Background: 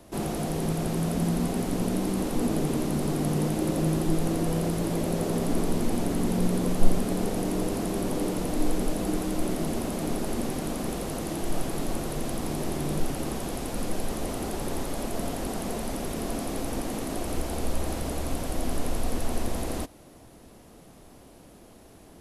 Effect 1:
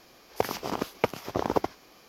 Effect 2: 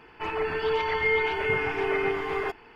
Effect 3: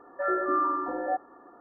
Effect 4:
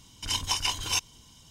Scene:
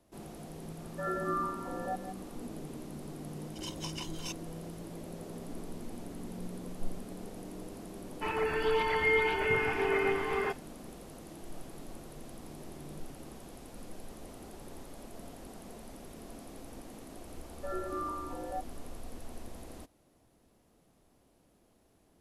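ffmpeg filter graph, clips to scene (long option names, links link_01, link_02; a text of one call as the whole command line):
ffmpeg -i bed.wav -i cue0.wav -i cue1.wav -i cue2.wav -i cue3.wav -filter_complex "[3:a]asplit=2[link_01][link_02];[0:a]volume=-16.5dB[link_03];[link_01]asplit=2[link_04][link_05];[link_05]adelay=169.1,volume=-9dB,highshelf=frequency=4000:gain=-3.8[link_06];[link_04][link_06]amix=inputs=2:normalize=0[link_07];[2:a]agate=range=-33dB:threshold=-41dB:ratio=3:release=100:detection=peak[link_08];[link_02]lowpass=1200[link_09];[link_07]atrim=end=1.6,asetpts=PTS-STARTPTS,volume=-8dB,afade=type=in:duration=0.004:curve=hsin,afade=type=out:start_time=1.596:duration=0.004:curve=hsin,adelay=790[link_10];[4:a]atrim=end=1.5,asetpts=PTS-STARTPTS,volume=-14.5dB,afade=type=in:duration=0.004:curve=hsin,afade=type=out:start_time=1.496:duration=0.004:curve=hsin,adelay=146853S[link_11];[link_08]atrim=end=2.75,asetpts=PTS-STARTPTS,volume=-3dB,afade=type=in:duration=0.004:curve=hsin,afade=type=out:start_time=2.746:duration=0.004:curve=hsin,adelay=8010[link_12];[link_09]atrim=end=1.6,asetpts=PTS-STARTPTS,volume=-9dB,afade=type=in:duration=0.004:curve=hsin,afade=type=out:start_time=1.596:duration=0.004:curve=hsin,adelay=17440[link_13];[link_03][link_10][link_11][link_12][link_13]amix=inputs=5:normalize=0" out.wav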